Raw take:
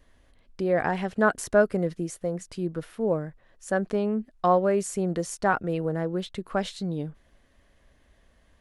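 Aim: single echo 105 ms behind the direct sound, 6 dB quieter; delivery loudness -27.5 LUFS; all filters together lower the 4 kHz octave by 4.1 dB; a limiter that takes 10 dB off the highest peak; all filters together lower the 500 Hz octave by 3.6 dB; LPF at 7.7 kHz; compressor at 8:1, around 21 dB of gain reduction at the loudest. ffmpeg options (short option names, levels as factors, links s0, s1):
-af "lowpass=7700,equalizer=f=500:t=o:g=-4.5,equalizer=f=4000:t=o:g=-5,acompressor=threshold=0.01:ratio=8,alimiter=level_in=3.76:limit=0.0631:level=0:latency=1,volume=0.266,aecho=1:1:105:0.501,volume=7.94"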